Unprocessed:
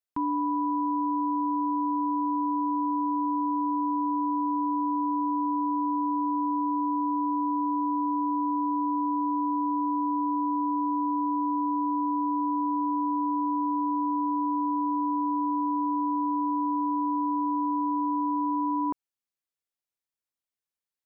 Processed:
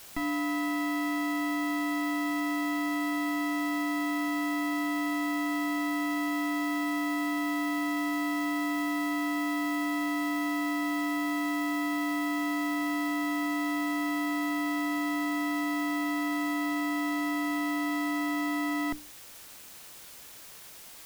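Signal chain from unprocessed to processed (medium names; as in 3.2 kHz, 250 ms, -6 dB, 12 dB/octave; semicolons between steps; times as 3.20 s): comb filter that takes the minimum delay 0.42 ms; hum notches 60/120/180/240/300 Hz; word length cut 8-bit, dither triangular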